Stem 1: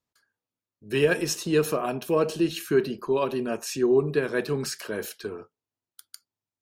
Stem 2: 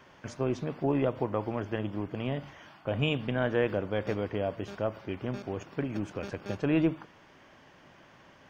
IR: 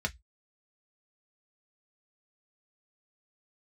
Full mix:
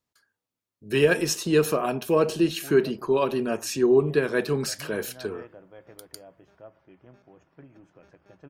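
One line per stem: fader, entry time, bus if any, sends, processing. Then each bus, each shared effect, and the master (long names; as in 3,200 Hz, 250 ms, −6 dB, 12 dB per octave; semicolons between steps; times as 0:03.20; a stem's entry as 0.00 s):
+2.0 dB, 0.00 s, no send, no processing
−18.5 dB, 1.80 s, send −11.5 dB, no processing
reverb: on, RT60 0.10 s, pre-delay 3 ms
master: no processing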